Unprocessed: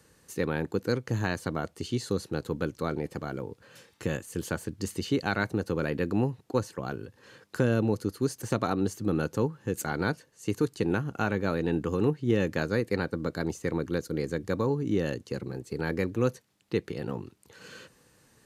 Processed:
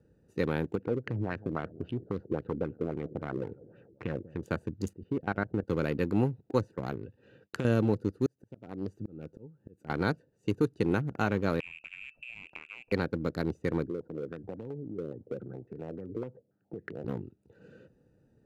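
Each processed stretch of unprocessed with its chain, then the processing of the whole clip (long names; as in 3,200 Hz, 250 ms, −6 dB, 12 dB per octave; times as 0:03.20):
0:00.75–0:04.43: repeating echo 190 ms, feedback 54%, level −21 dB + downward compressor 2 to 1, threshold −31 dBFS + auto-filter low-pass sine 3.7 Hz 350–2,700 Hz
0:04.93–0:05.68: low-pass filter 1,700 Hz + output level in coarse steps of 14 dB
0:07.03–0:07.65: downward expander −58 dBFS + parametric band 2,900 Hz +11 dB 1.3 octaves + downward compressor 4 to 1, threshold −28 dBFS
0:08.26–0:09.90: volume swells 661 ms + highs frequency-modulated by the lows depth 0.14 ms
0:11.60–0:12.92: high-pass filter 53 Hz 6 dB per octave + voice inversion scrambler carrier 2,800 Hz + downward compressor 12 to 1, threshold −35 dBFS
0:13.87–0:17.05: high-pass filter 86 Hz 24 dB per octave + downward compressor 5 to 1, threshold −37 dBFS + low-pass on a step sequencer 7.2 Hz 430–1,800 Hz
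whole clip: adaptive Wiener filter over 41 samples; notch filter 1,700 Hz, Q 20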